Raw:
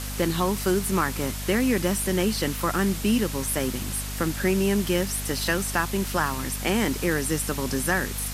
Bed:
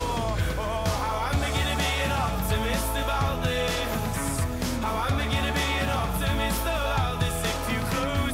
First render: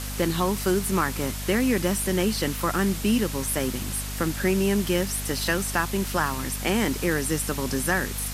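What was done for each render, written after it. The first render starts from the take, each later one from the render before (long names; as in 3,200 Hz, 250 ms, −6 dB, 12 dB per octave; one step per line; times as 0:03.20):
no processing that can be heard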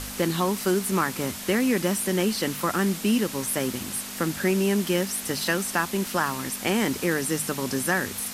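hum removal 50 Hz, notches 3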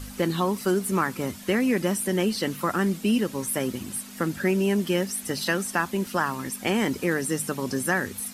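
broadband denoise 10 dB, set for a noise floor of −36 dBFS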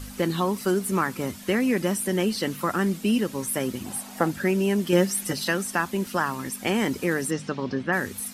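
0:03.85–0:04.31: parametric band 760 Hz +15 dB 0.78 octaves
0:04.92–0:05.33: comb filter 5.6 ms, depth 99%
0:07.30–0:07.92: low-pass filter 6,500 Hz → 3,300 Hz 24 dB per octave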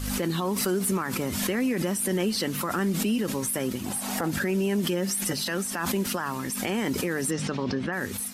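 brickwall limiter −18.5 dBFS, peak gain reduction 12 dB
background raised ahead of every attack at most 29 dB per second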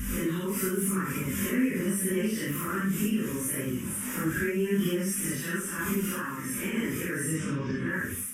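random phases in long frames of 200 ms
phaser with its sweep stopped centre 1,800 Hz, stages 4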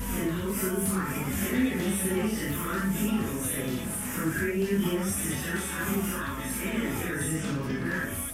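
mix in bed −13.5 dB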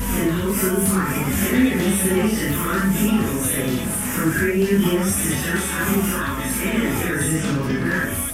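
level +9 dB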